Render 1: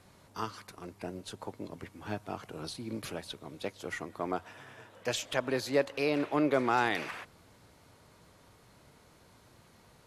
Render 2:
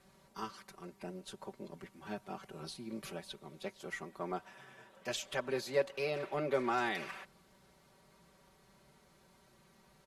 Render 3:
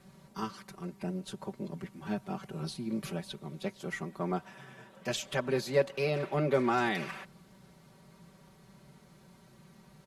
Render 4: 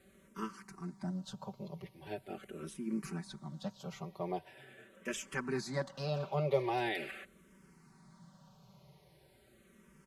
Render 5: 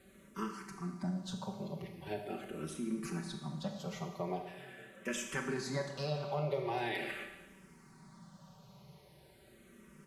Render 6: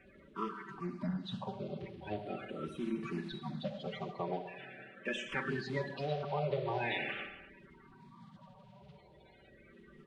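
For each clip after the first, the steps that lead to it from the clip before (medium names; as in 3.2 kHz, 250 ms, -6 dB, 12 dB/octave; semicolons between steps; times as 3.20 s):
comb 5.2 ms, depth 87%; trim -7.5 dB
peaking EQ 160 Hz +9.5 dB 1.4 oct; trim +3.5 dB
barber-pole phaser -0.42 Hz; trim -1.5 dB
compression 3:1, threshold -37 dBFS, peak gain reduction 9.5 dB; Schroeder reverb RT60 1.1 s, combs from 26 ms, DRR 4.5 dB; trim +2.5 dB
coarse spectral quantiser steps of 30 dB; resonant high shelf 4.7 kHz -12.5 dB, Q 1.5; trim +1 dB; Nellymoser 44 kbps 22.05 kHz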